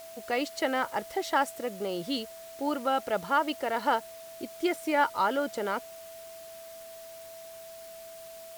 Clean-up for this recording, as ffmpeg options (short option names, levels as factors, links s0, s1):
-af "bandreject=f=660:w=30,afwtdn=0.0028"